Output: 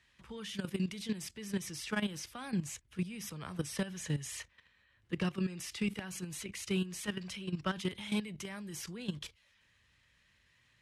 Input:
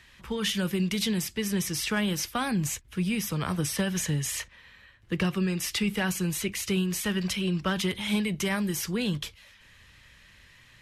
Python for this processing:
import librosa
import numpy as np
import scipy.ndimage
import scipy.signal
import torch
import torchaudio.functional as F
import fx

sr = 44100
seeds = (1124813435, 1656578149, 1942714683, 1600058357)

y = scipy.signal.sosfilt(scipy.signal.butter(4, 11000.0, 'lowpass', fs=sr, output='sos'), x)
y = fx.level_steps(y, sr, step_db=13)
y = scipy.signal.sosfilt(scipy.signal.butter(2, 45.0, 'highpass', fs=sr, output='sos'), y)
y = y * librosa.db_to_amplitude(-4.5)